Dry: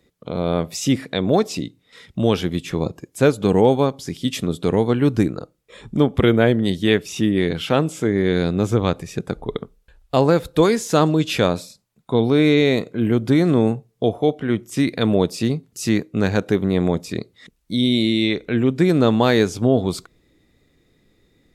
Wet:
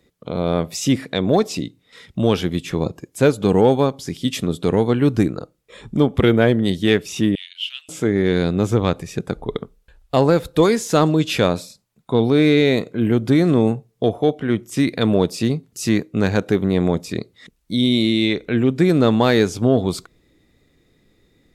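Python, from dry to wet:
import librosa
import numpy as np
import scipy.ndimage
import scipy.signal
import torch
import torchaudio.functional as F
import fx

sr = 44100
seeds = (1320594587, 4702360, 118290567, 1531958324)

p1 = np.clip(10.0 ** (10.5 / 20.0) * x, -1.0, 1.0) / 10.0 ** (10.5 / 20.0)
p2 = x + (p1 * librosa.db_to_amplitude(-9.5))
p3 = fx.ladder_highpass(p2, sr, hz=2800.0, resonance_pct=80, at=(7.35, 7.89))
y = p3 * librosa.db_to_amplitude(-1.5)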